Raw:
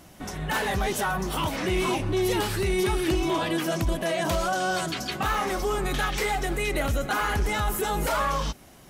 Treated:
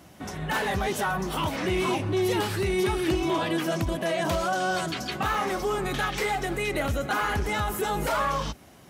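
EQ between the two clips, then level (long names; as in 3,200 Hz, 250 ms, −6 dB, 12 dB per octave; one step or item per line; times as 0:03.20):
high-pass filter 59 Hz 24 dB per octave
parametric band 12,000 Hz −4 dB 2 octaves
0.0 dB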